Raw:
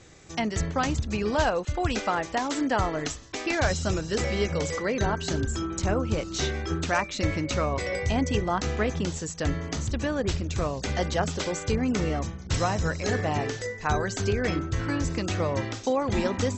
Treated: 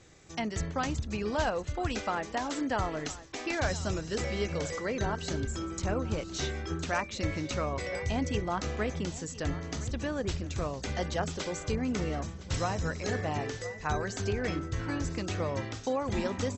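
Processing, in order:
single-tap delay 1,012 ms −17 dB
level −5.5 dB

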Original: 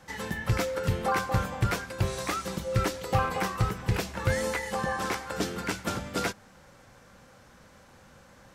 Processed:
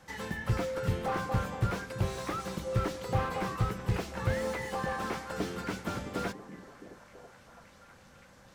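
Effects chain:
echo through a band-pass that steps 330 ms, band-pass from 190 Hz, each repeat 0.7 octaves, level −9 dB
slew-rate limiting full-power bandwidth 43 Hz
level −3 dB

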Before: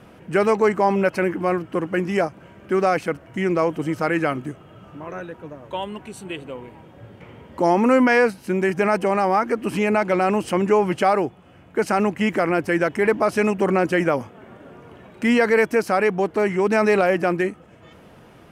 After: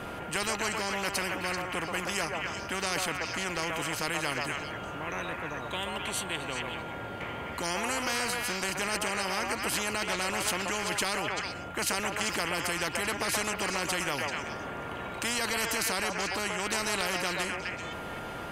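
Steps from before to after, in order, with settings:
notch filter 5,500 Hz, Q 12
steady tone 1,400 Hz −41 dBFS
on a send: echo through a band-pass that steps 129 ms, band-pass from 730 Hz, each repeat 1.4 octaves, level −1 dB
on the sum: every bin compressed towards the loudest bin 4 to 1
level −8.5 dB

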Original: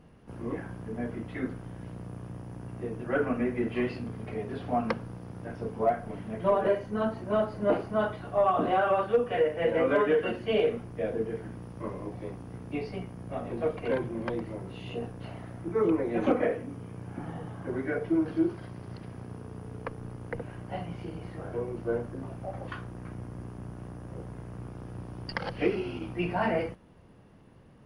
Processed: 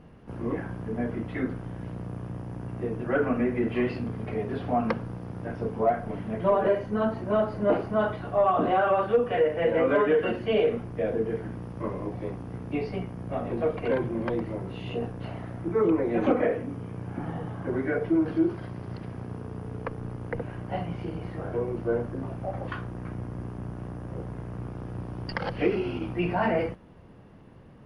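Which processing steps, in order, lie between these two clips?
in parallel at −2.5 dB: brickwall limiter −25.5 dBFS, peak gain reduction 10 dB
on the sum: high-shelf EQ 5,300 Hz −10 dB

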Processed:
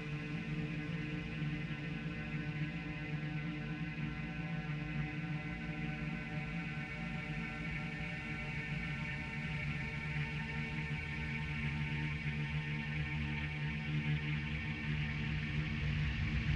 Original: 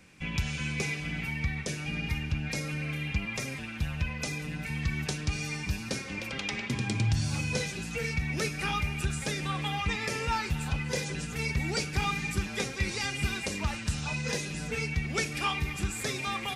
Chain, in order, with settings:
low-pass filter 4,000 Hz 12 dB per octave
extreme stretch with random phases 49×, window 0.25 s, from 0:04.48
highs frequency-modulated by the lows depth 0.33 ms
level −4.5 dB

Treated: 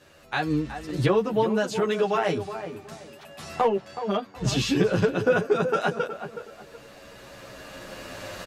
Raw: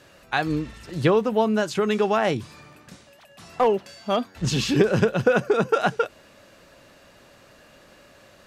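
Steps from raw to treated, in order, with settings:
camcorder AGC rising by 7.5 dB per second
0:03.66–0:04.35: high-shelf EQ 5,100 Hz −9 dB
tape delay 370 ms, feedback 33%, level −8.5 dB, low-pass 1,400 Hz
barber-pole flanger 10 ms −0.32 Hz

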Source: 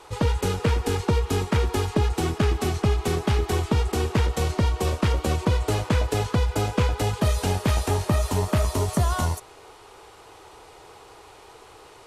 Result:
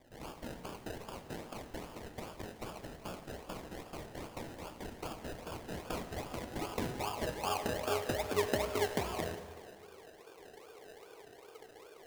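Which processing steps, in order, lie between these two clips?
band-pass filter sweep 5,300 Hz → 460 Hz, 0:04.74–0:08.28
sample-and-hold swept by an LFO 31×, swing 60% 2.5 Hz
dense smooth reverb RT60 1.9 s, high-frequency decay 0.75×, DRR 8.5 dB
level −1.5 dB

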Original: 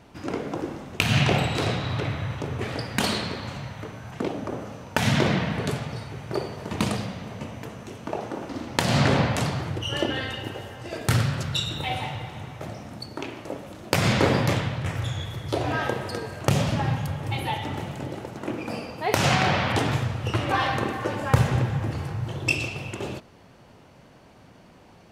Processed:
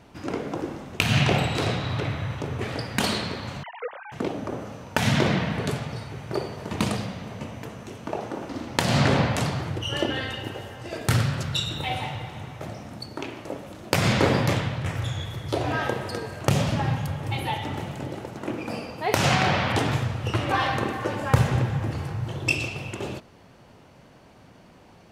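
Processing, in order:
0:03.63–0:04.12: three sine waves on the formant tracks

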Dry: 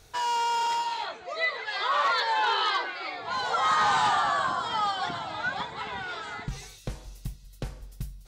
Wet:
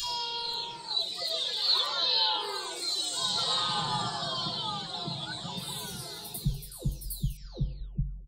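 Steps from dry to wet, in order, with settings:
every frequency bin delayed by itself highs early, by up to 908 ms
drawn EQ curve 150 Hz 0 dB, 2,000 Hz −22 dB, 4,100 Hz +5 dB, 6,100 Hz −5 dB, 9,300 Hz +7 dB
level +8 dB

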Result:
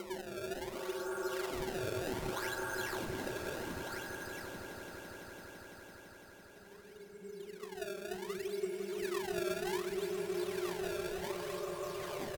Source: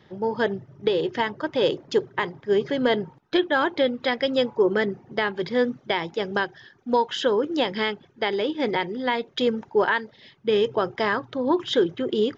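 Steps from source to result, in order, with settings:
spectral dynamics exaggerated over time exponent 3
low-shelf EQ 230 Hz −3.5 dB
downward compressor 10 to 1, threshold −29 dBFS, peak gain reduction 11 dB
brickwall limiter −32 dBFS, peak gain reduction 11 dB
upward compression, threshold −41 dBFS
extreme stretch with random phases 11×, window 0.50 s, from 0:09.69
pitch vibrato 12 Hz 8.5 cents
sample-and-hold swept by an LFO 22×, swing 160% 0.66 Hz
wave folding −29 dBFS
pitch shifter −2 semitones
double-tracking delay 40 ms −11.5 dB
echo that builds up and dies away 168 ms, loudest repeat 5, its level −13.5 dB

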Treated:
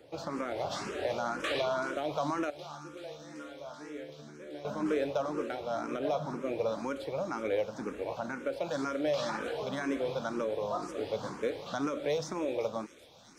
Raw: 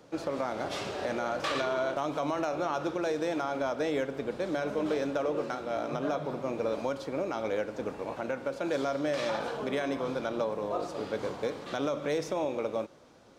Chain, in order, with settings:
0:02.50–0:04.65: tuned comb filter 74 Hz, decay 1 s, harmonics all, mix 90%
delay with a high-pass on its return 383 ms, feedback 84%, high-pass 3,900 Hz, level −11 dB
frequency shifter mixed with the dry sound +2 Hz
level +1.5 dB

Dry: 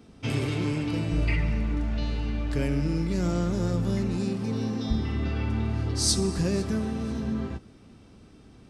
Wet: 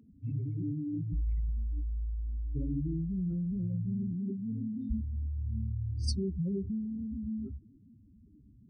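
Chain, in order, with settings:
expanding power law on the bin magnitudes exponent 3.7
level −6 dB

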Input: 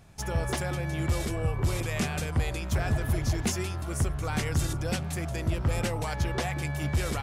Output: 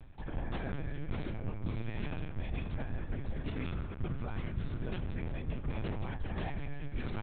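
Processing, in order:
echo with shifted repeats 87 ms, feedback 40%, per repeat +60 Hz, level −14.5 dB
in parallel at −10 dB: soft clipping −25.5 dBFS, distortion −13 dB
on the sum: parametric band 120 Hz +9.5 dB 1.1 octaves
spring reverb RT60 3.3 s, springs 31 ms, chirp 55 ms, DRR 8 dB
reversed playback
downward compressor 5 to 1, threshold −31 dBFS, peak gain reduction 16 dB
reversed playback
linear-prediction vocoder at 8 kHz pitch kept
level −3 dB

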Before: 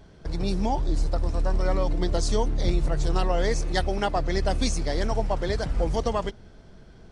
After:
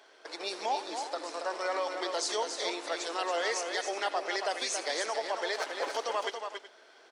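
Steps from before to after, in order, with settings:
0:05.54–0:05.97: lower of the sound and its delayed copy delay 7.1 ms
Bessel high-pass filter 620 Hz, order 8
parametric band 2,200 Hz +4 dB 2.3 octaves
brickwall limiter −22.5 dBFS, peak gain reduction 10.5 dB
multi-tap delay 78/278/373 ms −16.5/−6.5/−16 dB

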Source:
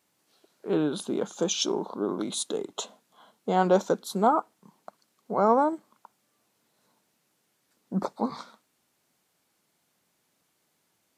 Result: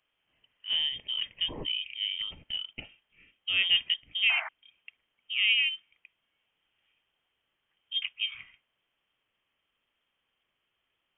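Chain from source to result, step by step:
voice inversion scrambler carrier 3,400 Hz
sound drawn into the spectrogram noise, 0:04.29–0:04.49, 620–2,400 Hz −34 dBFS
level −4 dB

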